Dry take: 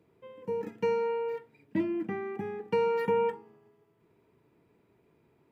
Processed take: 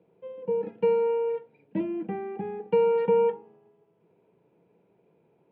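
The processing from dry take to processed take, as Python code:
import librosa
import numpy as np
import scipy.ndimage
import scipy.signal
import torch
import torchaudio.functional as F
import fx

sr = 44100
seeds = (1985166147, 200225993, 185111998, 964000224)

y = fx.cabinet(x, sr, low_hz=140.0, low_slope=12, high_hz=3200.0, hz=(180.0, 260.0, 510.0, 780.0, 1200.0, 1900.0), db=(7, -4, 9, 5, -6, -8))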